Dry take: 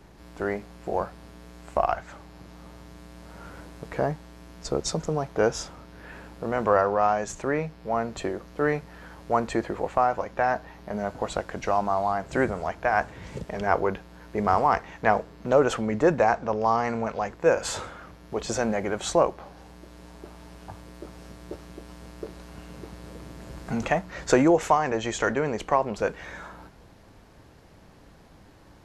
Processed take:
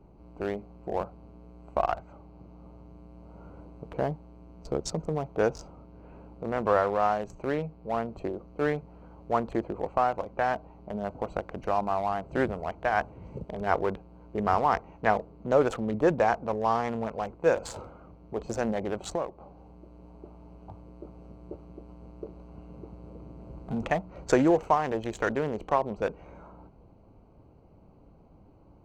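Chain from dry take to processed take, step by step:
adaptive Wiener filter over 25 samples
0:18.99–0:19.41: downward compressor 2.5 to 1, threshold −28 dBFS, peak gain reduction 9 dB
level −2.5 dB

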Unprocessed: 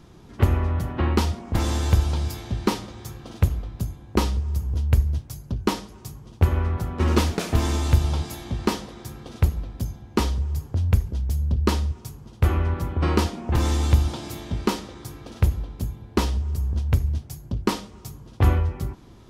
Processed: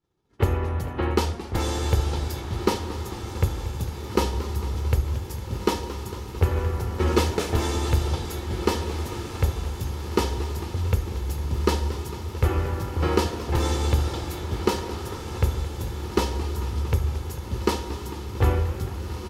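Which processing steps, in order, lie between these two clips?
comb filter 2.3 ms, depth 37%
downward expander −32 dBFS
low-shelf EQ 73 Hz −9 dB
on a send: feedback delay with all-pass diffusion 1,694 ms, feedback 58%, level −8.5 dB
on the sum: dynamic equaliser 480 Hz, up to +4 dB, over −38 dBFS, Q 3
feedback echo with a swinging delay time 225 ms, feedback 77%, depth 168 cents, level −15.5 dB
level −1 dB

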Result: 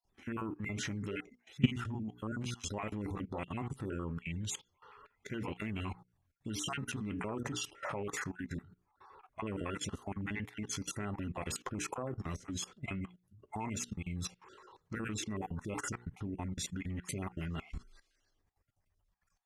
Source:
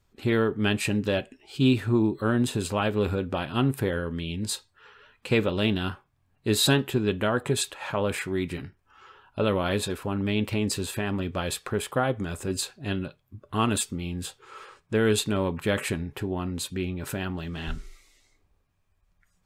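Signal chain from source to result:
time-frequency cells dropped at random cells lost 30%
mains-hum notches 60/120/180/240/300/360/420/480 Hz
output level in coarse steps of 19 dB
harmonic generator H 2 −37 dB, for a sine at −11.5 dBFS
formants moved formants −4 semitones

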